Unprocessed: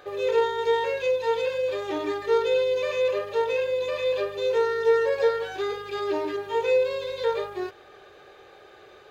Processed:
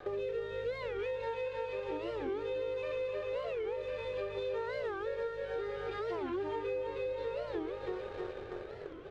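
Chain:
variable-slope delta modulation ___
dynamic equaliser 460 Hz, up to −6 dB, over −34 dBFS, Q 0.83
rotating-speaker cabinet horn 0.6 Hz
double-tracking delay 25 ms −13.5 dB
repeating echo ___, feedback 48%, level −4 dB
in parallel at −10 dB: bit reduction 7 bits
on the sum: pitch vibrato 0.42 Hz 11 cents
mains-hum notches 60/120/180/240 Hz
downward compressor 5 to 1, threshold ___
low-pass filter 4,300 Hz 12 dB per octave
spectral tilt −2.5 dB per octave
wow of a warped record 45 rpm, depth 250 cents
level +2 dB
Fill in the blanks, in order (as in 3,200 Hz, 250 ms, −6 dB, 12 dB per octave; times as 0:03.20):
64 kbit/s, 314 ms, −40 dBFS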